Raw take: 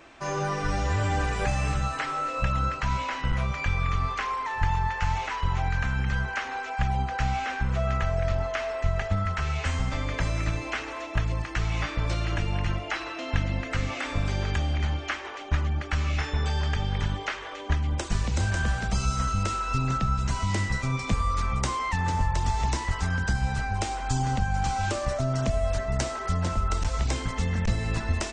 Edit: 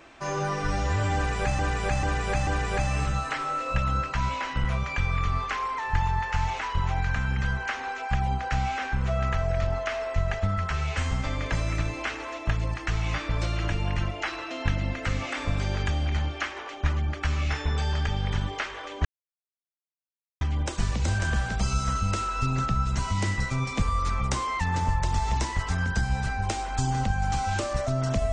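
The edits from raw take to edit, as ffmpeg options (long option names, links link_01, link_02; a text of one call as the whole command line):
ffmpeg -i in.wav -filter_complex "[0:a]asplit=5[link_01][link_02][link_03][link_04][link_05];[link_01]atrim=end=1.592[link_06];[link_02]atrim=start=1.148:end=1.592[link_07];[link_03]atrim=start=1.148:end=1.592[link_08];[link_04]atrim=start=1.148:end=17.73,asetpts=PTS-STARTPTS,afade=type=out:start_time=16.578:duration=0.004:curve=hsin,apad=pad_dur=1.36[link_09];[link_05]atrim=start=17.73,asetpts=PTS-STARTPTS,afade=type=in:duration=0.004:curve=hsin[link_10];[link_06][link_07]acrossfade=duration=0.004:curve1=hsin:curve2=hsin[link_11];[link_11][link_08]acrossfade=duration=0.004:curve1=hsin:curve2=hsin[link_12];[link_09][link_10]concat=n=2:v=0:a=1[link_13];[link_12][link_13]acrossfade=duration=0.004:curve1=hsin:curve2=hsin" out.wav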